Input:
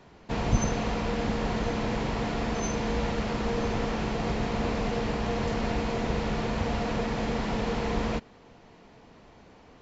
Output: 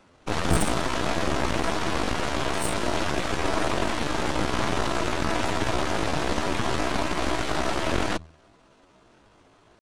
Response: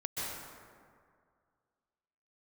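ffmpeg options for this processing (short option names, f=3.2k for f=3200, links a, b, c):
-af "bandreject=f=56.5:t=h:w=4,bandreject=f=113:t=h:w=4,bandreject=f=169.5:t=h:w=4,aeval=exprs='0.282*(cos(1*acos(clip(val(0)/0.282,-1,1)))-cos(1*PI/2))+0.0447*(cos(2*acos(clip(val(0)/0.282,-1,1)))-cos(2*PI/2))+0.0141*(cos(7*acos(clip(val(0)/0.282,-1,1)))-cos(7*PI/2))+0.0891*(cos(8*acos(clip(val(0)/0.282,-1,1)))-cos(8*PI/2))':c=same,asetrate=62367,aresample=44100,atempo=0.707107"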